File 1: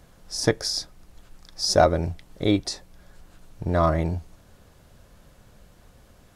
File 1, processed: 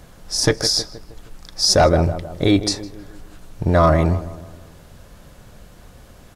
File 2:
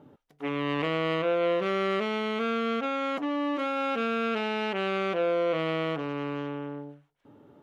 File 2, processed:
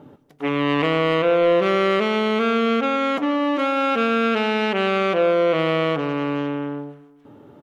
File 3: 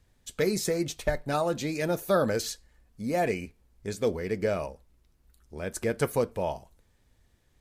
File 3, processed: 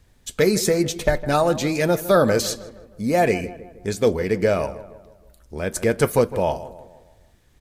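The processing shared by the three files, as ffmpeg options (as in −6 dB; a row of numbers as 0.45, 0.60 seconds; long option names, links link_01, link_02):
-filter_complex "[0:a]asplit=2[link_01][link_02];[link_02]adelay=157,lowpass=frequency=1900:poles=1,volume=-15dB,asplit=2[link_03][link_04];[link_04]adelay=157,lowpass=frequency=1900:poles=1,volume=0.5,asplit=2[link_05][link_06];[link_06]adelay=157,lowpass=frequency=1900:poles=1,volume=0.5,asplit=2[link_07][link_08];[link_08]adelay=157,lowpass=frequency=1900:poles=1,volume=0.5,asplit=2[link_09][link_10];[link_10]adelay=157,lowpass=frequency=1900:poles=1,volume=0.5[link_11];[link_01][link_03][link_05][link_07][link_09][link_11]amix=inputs=6:normalize=0,apsyclip=16dB,volume=-7.5dB"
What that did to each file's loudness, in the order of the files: +6.5, +8.5, +8.5 LU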